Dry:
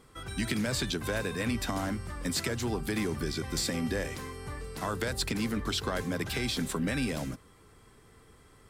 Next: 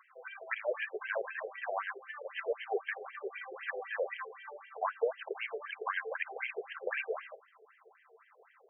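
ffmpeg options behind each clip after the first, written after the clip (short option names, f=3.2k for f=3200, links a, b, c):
-af "aphaser=in_gain=1:out_gain=1:delay=4.6:decay=0.42:speed=1.9:type=sinusoidal,afftfilt=real='re*between(b*sr/1024,520*pow(2300/520,0.5+0.5*sin(2*PI*3.9*pts/sr))/1.41,520*pow(2300/520,0.5+0.5*sin(2*PI*3.9*pts/sr))*1.41)':imag='im*between(b*sr/1024,520*pow(2300/520,0.5+0.5*sin(2*PI*3.9*pts/sr))/1.41,520*pow(2300/520,0.5+0.5*sin(2*PI*3.9*pts/sr))*1.41)':win_size=1024:overlap=0.75,volume=3.5dB"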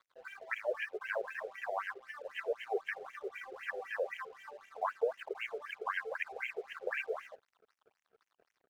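-af "aeval=exprs='sgn(val(0))*max(abs(val(0))-0.001,0)':c=same,volume=-1dB"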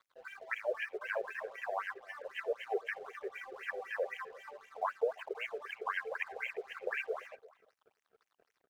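-filter_complex "[0:a]asplit=2[a][b];[b]adelay=344,volume=-20dB,highshelf=f=4k:g=-7.74[c];[a][c]amix=inputs=2:normalize=0"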